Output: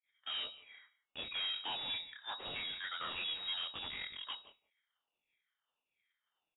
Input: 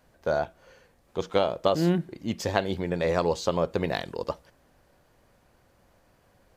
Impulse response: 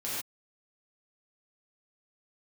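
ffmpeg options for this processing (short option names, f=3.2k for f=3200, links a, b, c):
-filter_complex "[0:a]afftfilt=real='re*pow(10,23/40*sin(2*PI*(0.58*log(max(b,1)*sr/1024/100)/log(2)-(1.5)*(pts-256)/sr)))':imag='im*pow(10,23/40*sin(2*PI*(0.58*log(max(b,1)*sr/1024/100)/log(2)-(1.5)*(pts-256)/sr)))':win_size=1024:overlap=0.75,flanger=delay=19:depth=7.8:speed=2.1,agate=range=-33dB:threshold=-48dB:ratio=3:detection=peak,aderivative,asplit=2[a][b];[b]aecho=0:1:172:0.0891[c];[a][c]amix=inputs=2:normalize=0,aeval=exprs='(tanh(282*val(0)+0.65)-tanh(0.65))/282':c=same,equalizer=f=150:w=1.1:g=3,bandreject=f=402.9:t=h:w=4,bandreject=f=805.8:t=h:w=4,bandreject=f=1.2087k:t=h:w=4,bandreject=f=1.6116k:t=h:w=4,lowpass=f=3.2k:t=q:w=0.5098,lowpass=f=3.2k:t=q:w=0.6013,lowpass=f=3.2k:t=q:w=0.9,lowpass=f=3.2k:t=q:w=2.563,afreqshift=-3800,volume=12.5dB"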